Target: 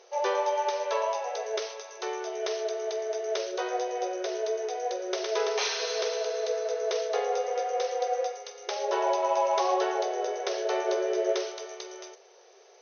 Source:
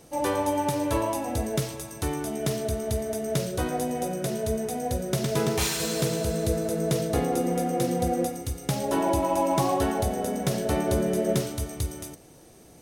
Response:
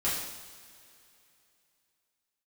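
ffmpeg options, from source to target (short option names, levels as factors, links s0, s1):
-af "afftfilt=real='re*between(b*sr/4096,360,6400)':imag='im*between(b*sr/4096,360,6400)':win_size=4096:overlap=0.75" -ar 48000 -c:a libopus -b:a 96k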